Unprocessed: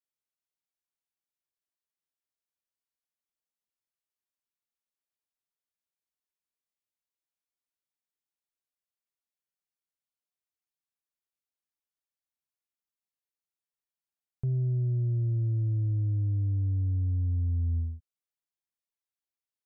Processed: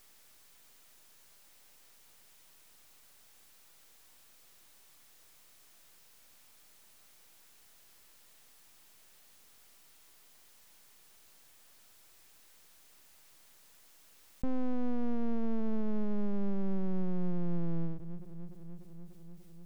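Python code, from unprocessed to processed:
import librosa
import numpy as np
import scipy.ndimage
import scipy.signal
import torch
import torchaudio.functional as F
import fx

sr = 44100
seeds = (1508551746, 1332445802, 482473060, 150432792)

y = fx.echo_bbd(x, sr, ms=295, stages=1024, feedback_pct=61, wet_db=-22.5)
y = np.abs(y)
y = fx.env_flatten(y, sr, amount_pct=50)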